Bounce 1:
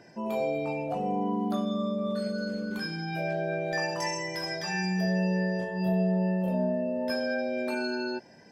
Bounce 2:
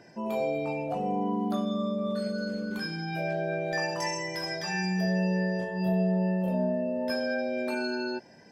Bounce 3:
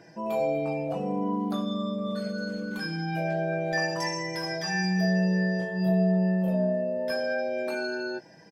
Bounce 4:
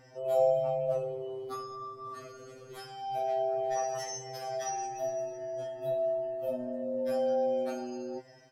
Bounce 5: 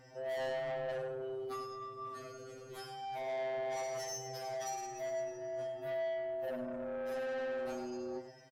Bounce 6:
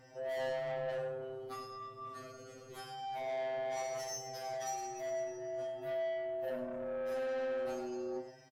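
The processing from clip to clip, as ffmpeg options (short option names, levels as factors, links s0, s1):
-af anull
-af "aecho=1:1:6.2:0.55"
-af "afftfilt=real='re*2.45*eq(mod(b,6),0)':imag='im*2.45*eq(mod(b,6),0)':win_size=2048:overlap=0.75"
-filter_complex "[0:a]asoftclip=type=tanh:threshold=0.02,asplit=2[s0][s1];[s1]aecho=0:1:100:0.316[s2];[s0][s2]amix=inputs=2:normalize=0,volume=0.841"
-filter_complex "[0:a]asplit=2[s0][s1];[s1]adelay=27,volume=0.447[s2];[s0][s2]amix=inputs=2:normalize=0,volume=0.891"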